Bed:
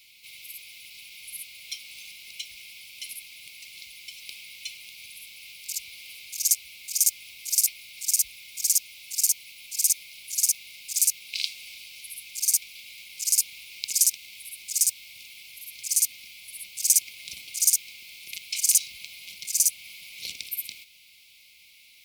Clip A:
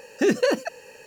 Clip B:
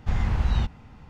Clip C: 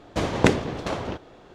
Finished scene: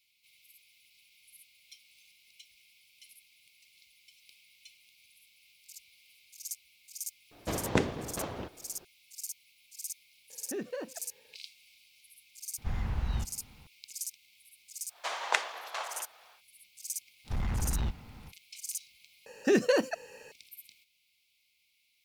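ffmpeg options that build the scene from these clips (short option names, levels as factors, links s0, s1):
-filter_complex "[3:a]asplit=2[s0][s1];[1:a]asplit=2[s2][s3];[2:a]asplit=2[s4][s5];[0:a]volume=0.126[s6];[s2]highshelf=f=3000:g=-10.5[s7];[s1]highpass=f=790:w=0.5412,highpass=f=790:w=1.3066[s8];[s5]asoftclip=type=tanh:threshold=0.0596[s9];[s6]asplit=2[s10][s11];[s10]atrim=end=19.264[s12];[s3]atrim=end=1.06,asetpts=PTS-STARTPTS,volume=0.596[s13];[s11]atrim=start=20.316[s14];[s0]atrim=end=1.54,asetpts=PTS-STARTPTS,volume=0.355,afade=t=in:d=0.004:c=hsin,afade=t=out:st=1.536:d=0.004:c=hsin,adelay=7310[s15];[s7]atrim=end=1.06,asetpts=PTS-STARTPTS,volume=0.141,afade=t=in:d=0.004:c=hsin,afade=t=out:st=1.056:d=0.004:c=hsin,adelay=10300[s16];[s4]atrim=end=1.09,asetpts=PTS-STARTPTS,volume=0.355,afade=t=in:d=0.004:c=hsin,afade=t=out:st=1.086:d=0.004:c=hsin,adelay=12580[s17];[s8]atrim=end=1.54,asetpts=PTS-STARTPTS,volume=0.668,afade=t=in:d=0.1,afade=t=out:st=1.44:d=0.1,adelay=14880[s18];[s9]atrim=end=1.09,asetpts=PTS-STARTPTS,volume=0.75,afade=t=in:d=0.05,afade=t=out:st=1.04:d=0.05,adelay=17240[s19];[s12][s13]acrossfade=d=0.004:c1=hsin:c2=hsin[s20];[s20][s14]acrossfade=d=0.004:c1=hsin:c2=hsin[s21];[s21][s15][s16][s17][s18][s19]amix=inputs=6:normalize=0"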